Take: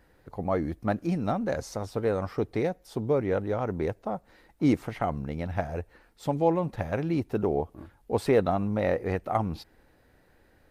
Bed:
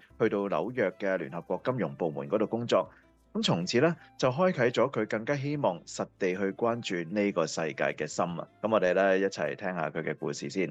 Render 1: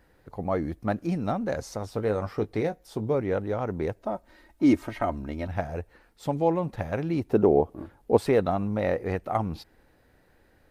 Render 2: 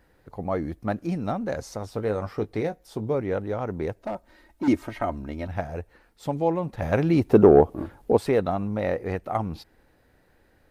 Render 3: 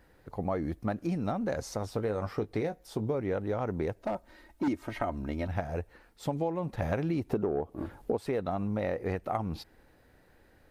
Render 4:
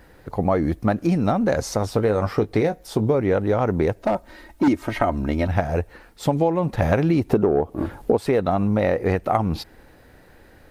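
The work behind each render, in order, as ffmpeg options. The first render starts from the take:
-filter_complex "[0:a]asettb=1/sr,asplit=3[s0][s1][s2];[s0]atrim=end=1.914[s3];[s1]atrim=start=1.91:end=3.15,asetpts=PTS-STARTPTS,afade=t=in:d=0.004:c=qsin,afade=t=out:st=1.236:d=0.004:c=qsin,asplit=2[s4][s5];[s5]adelay=19,volume=0.282[s6];[s4][s6]amix=inputs=2:normalize=0,atrim=end_sample=54684[s7];[s2]atrim=start=3.146[s8];[s3][s7]acrossfade=d=0.004:c1=hsin:c2=qsin[s9];[s9][s8]acrossfade=d=0.004:c1=qsin:c2=hsin,asettb=1/sr,asplit=3[s10][s11][s12];[s10]atrim=end=4.014[s13];[s11]atrim=start=4.01:end=5.48,asetpts=PTS-STARTPTS,afade=t=in:d=0.004:c=qsin,afade=t=out:st=1.466:d=0.004:c=qsin,aecho=1:1:3.2:0.65,atrim=end_sample=64827[s14];[s12]atrim=start=5.476[s15];[s13][s14]acrossfade=d=0.004:c1=hsin:c2=qsin[s16];[s16][s15]acrossfade=d=0.004:c1=qsin:c2=hsin,asettb=1/sr,asplit=3[s17][s18][s19];[s17]atrim=end=7.294[s20];[s18]atrim=start=7.29:end=8.17,asetpts=PTS-STARTPTS,afade=t=in:d=0.004:c=qsin,afade=t=out:st=0.876:d=0.004:c=qsin,equalizer=f=390:w=0.45:g=7.5[s21];[s19]atrim=start=8.166[s22];[s20][s21]acrossfade=d=0.004:c1=hsin:c2=qsin[s23];[s23][s22]acrossfade=d=0.004:c1=qsin:c2=hsin"
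-filter_complex "[0:a]asettb=1/sr,asplit=3[s0][s1][s2];[s0]atrim=end=4.024[s3];[s1]atrim=start=4.02:end=4.68,asetpts=PTS-STARTPTS,afade=t=in:d=0.004:c=qsin,afade=t=out:st=0.656:d=0.004:c=qsin,asoftclip=type=hard:threshold=0.0631[s4];[s2]atrim=start=4.676[s5];[s3][s4]acrossfade=d=0.004:c1=hsin:c2=qsin[s6];[s6][s5]acrossfade=d=0.004:c1=qsin:c2=hsin,asettb=1/sr,asplit=3[s7][s8][s9];[s7]atrim=end=6.824[s10];[s8]atrim=start=6.82:end=8.13,asetpts=PTS-STARTPTS,afade=t=in:d=0.004:c=qsin,afade=t=out:st=1.306:d=0.004:c=qsin,acontrast=82[s11];[s9]atrim=start=8.126[s12];[s10][s11]acrossfade=d=0.004:c1=hsin:c2=qsin[s13];[s13][s12]acrossfade=d=0.004:c1=qsin:c2=hsin"
-af "acompressor=threshold=0.0447:ratio=10"
-af "volume=3.76"

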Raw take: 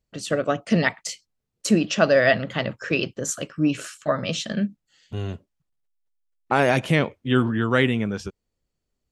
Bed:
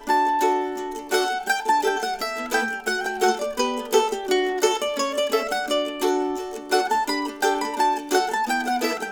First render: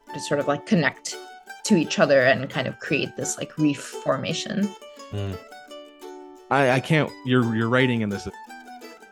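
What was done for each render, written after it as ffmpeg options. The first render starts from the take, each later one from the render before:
-filter_complex "[1:a]volume=0.126[s0];[0:a][s0]amix=inputs=2:normalize=0"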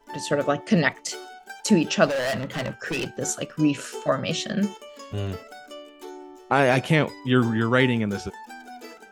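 -filter_complex "[0:a]asettb=1/sr,asplit=3[s0][s1][s2];[s0]atrim=end=2.064[s3];[s1]atrim=start=2.06:end=3.17,asetpts=PTS-STARTPTS,afade=t=in:d=0.004:c=qsin,afade=t=out:st=1.106:d=0.004:c=qsin,asoftclip=type=hard:threshold=0.0668[s4];[s2]atrim=start=3.166[s5];[s3][s4]acrossfade=d=0.004:c1=hsin:c2=qsin[s6];[s6][s5]acrossfade=d=0.004:c1=qsin:c2=hsin"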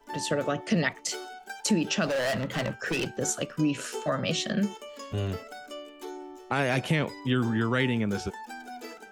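-filter_complex "[0:a]acrossover=split=250|1600[s0][s1][s2];[s1]alimiter=limit=0.126:level=0:latency=1:release=24[s3];[s0][s3][s2]amix=inputs=3:normalize=0,acompressor=threshold=0.0562:ratio=2"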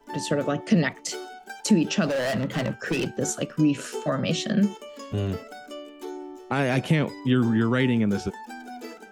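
-af "equalizer=f=220:t=o:w=2.1:g=6"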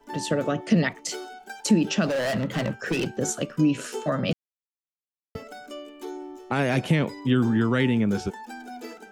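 -filter_complex "[0:a]asplit=3[s0][s1][s2];[s0]atrim=end=4.33,asetpts=PTS-STARTPTS,afade=t=out:st=4.326:d=0.004:c=hsin[s3];[s1]atrim=start=4.33:end=5.35,asetpts=PTS-STARTPTS,volume=0[s4];[s2]atrim=start=5.35,asetpts=PTS-STARTPTS,afade=t=in:d=0.004:c=hsin[s5];[s3][s4][s5]concat=n=3:v=0:a=1"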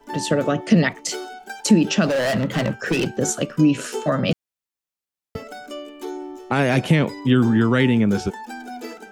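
-af "volume=1.78"

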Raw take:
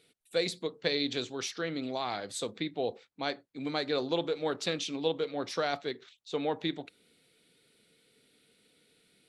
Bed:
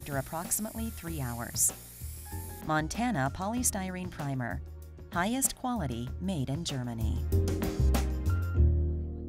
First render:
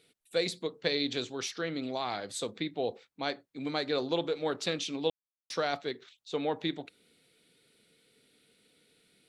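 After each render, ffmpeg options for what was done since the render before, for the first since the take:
-filter_complex "[0:a]asplit=3[s0][s1][s2];[s0]atrim=end=5.1,asetpts=PTS-STARTPTS,afade=t=out:st=5.096:d=0.004:c=hsin[s3];[s1]atrim=start=5.1:end=5.5,asetpts=PTS-STARTPTS,volume=0[s4];[s2]atrim=start=5.5,asetpts=PTS-STARTPTS,afade=t=in:d=0.004:c=hsin[s5];[s3][s4][s5]concat=n=3:v=0:a=1"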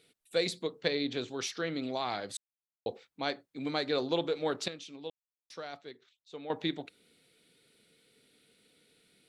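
-filter_complex "[0:a]asettb=1/sr,asplit=3[s0][s1][s2];[s0]atrim=end=0.884[s3];[s1]atrim=start=0.88:end=1.28,asetpts=PTS-STARTPTS,afade=t=in:d=0.004:c=qsin,afade=t=out:st=0.396:d=0.004:c=qsin,highshelf=f=4400:g=-12[s4];[s2]atrim=start=1.276[s5];[s3][s4]acrossfade=d=0.004:c1=hsin:c2=qsin[s6];[s6][s5]acrossfade=d=0.004:c1=qsin:c2=hsin,asplit=5[s7][s8][s9][s10][s11];[s7]atrim=end=2.37,asetpts=PTS-STARTPTS,afade=t=out:st=2.366:d=0.004:c=hsin[s12];[s8]atrim=start=2.37:end=2.86,asetpts=PTS-STARTPTS,volume=0[s13];[s9]atrim=start=2.86:end=4.682,asetpts=PTS-STARTPTS,afade=t=in:d=0.004:c=hsin[s14];[s10]atrim=start=4.678:end=6.502,asetpts=PTS-STARTPTS,volume=0.266[s15];[s11]atrim=start=6.498[s16];[s12][s13][s14]concat=n=3:v=0:a=1[s17];[s17][s15]acrossfade=d=0.004:c1=hsin:c2=hsin[s18];[s18][s16]acrossfade=d=0.004:c1=hsin:c2=hsin"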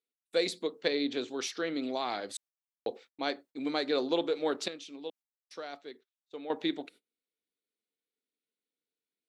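-af "agate=range=0.0316:threshold=0.00178:ratio=16:detection=peak,lowshelf=f=190:t=q:w=1.5:g=-10"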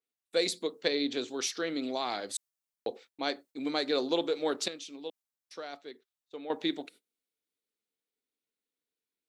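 -af "adynamicequalizer=threshold=0.00355:dfrequency=4400:dqfactor=0.7:tfrequency=4400:tqfactor=0.7:attack=5:release=100:ratio=0.375:range=3.5:mode=boostabove:tftype=highshelf"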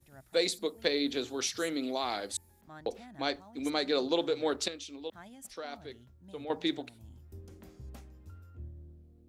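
-filter_complex "[1:a]volume=0.0891[s0];[0:a][s0]amix=inputs=2:normalize=0"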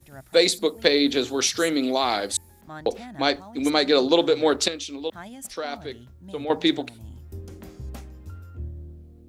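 -af "volume=3.35"

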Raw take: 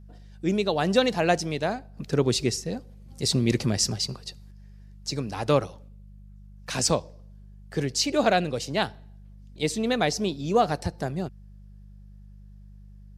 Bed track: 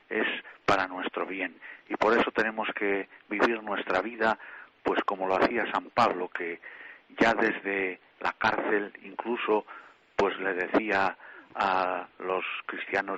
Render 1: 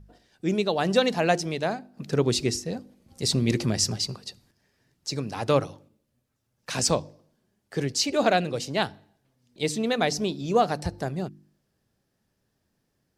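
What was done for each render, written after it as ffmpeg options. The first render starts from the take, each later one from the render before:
-af "bandreject=f=50:t=h:w=4,bandreject=f=100:t=h:w=4,bandreject=f=150:t=h:w=4,bandreject=f=200:t=h:w=4,bandreject=f=250:t=h:w=4,bandreject=f=300:t=h:w=4,bandreject=f=350:t=h:w=4"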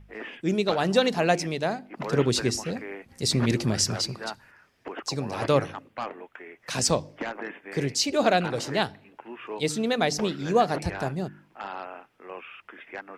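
-filter_complex "[1:a]volume=0.299[s0];[0:a][s0]amix=inputs=2:normalize=0"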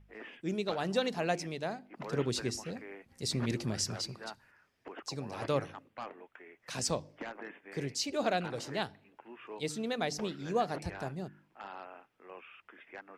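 -af "volume=0.335"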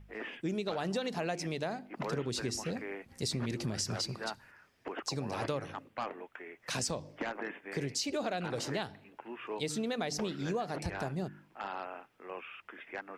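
-filter_complex "[0:a]asplit=2[s0][s1];[s1]alimiter=level_in=1.68:limit=0.0631:level=0:latency=1:release=71,volume=0.596,volume=1[s2];[s0][s2]amix=inputs=2:normalize=0,acompressor=threshold=0.0282:ratio=6"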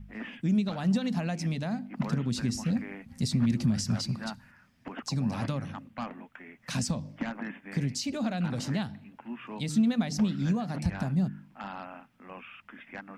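-af "lowshelf=f=290:t=q:w=3:g=7.5,bandreject=f=450:w=14"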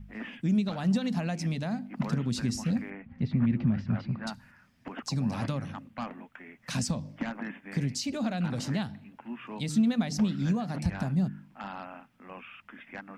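-filter_complex "[0:a]asettb=1/sr,asplit=3[s0][s1][s2];[s0]atrim=end=2.904[s3];[s1]atrim=start=2.9:end=4.27,asetpts=PTS-STARTPTS,afade=t=in:d=0.004:c=qsin,afade=t=out:st=1.366:d=0.004:c=qsin,lowpass=f=2600:w=0.5412,lowpass=f=2600:w=1.3066[s4];[s2]atrim=start=4.266[s5];[s3][s4]acrossfade=d=0.004:c1=hsin:c2=qsin[s6];[s6][s5]acrossfade=d=0.004:c1=qsin:c2=hsin"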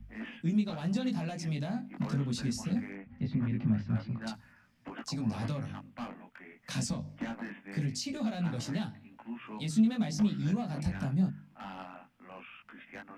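-filter_complex "[0:a]acrossover=split=120|460|2900[s0][s1][s2][s3];[s2]asoftclip=type=hard:threshold=0.0141[s4];[s0][s1][s4][s3]amix=inputs=4:normalize=0,flanger=delay=17.5:depth=4:speed=0.22"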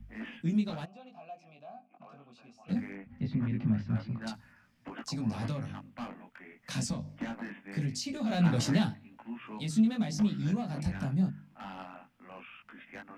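-filter_complex "[0:a]asplit=3[s0][s1][s2];[s0]afade=t=out:st=0.84:d=0.02[s3];[s1]asplit=3[s4][s5][s6];[s4]bandpass=f=730:t=q:w=8,volume=1[s7];[s5]bandpass=f=1090:t=q:w=8,volume=0.501[s8];[s6]bandpass=f=2440:t=q:w=8,volume=0.355[s9];[s7][s8][s9]amix=inputs=3:normalize=0,afade=t=in:st=0.84:d=0.02,afade=t=out:st=2.68:d=0.02[s10];[s2]afade=t=in:st=2.68:d=0.02[s11];[s3][s10][s11]amix=inputs=3:normalize=0,asplit=3[s12][s13][s14];[s12]afade=t=out:st=8.29:d=0.02[s15];[s13]acontrast=89,afade=t=in:st=8.29:d=0.02,afade=t=out:st=8.93:d=0.02[s16];[s14]afade=t=in:st=8.93:d=0.02[s17];[s15][s16][s17]amix=inputs=3:normalize=0"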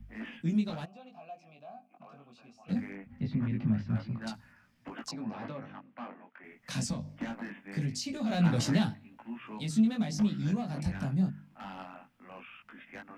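-filter_complex "[0:a]asettb=1/sr,asplit=3[s0][s1][s2];[s0]atrim=end=5.114[s3];[s1]atrim=start=5.11:end=6.44,asetpts=PTS-STARTPTS,afade=t=in:d=0.004:c=qsin,afade=t=out:st=1.326:d=0.004:c=qsin,highpass=270,lowpass=2300[s4];[s2]atrim=start=6.436[s5];[s3][s4]acrossfade=d=0.004:c1=hsin:c2=qsin[s6];[s6][s5]acrossfade=d=0.004:c1=qsin:c2=hsin"

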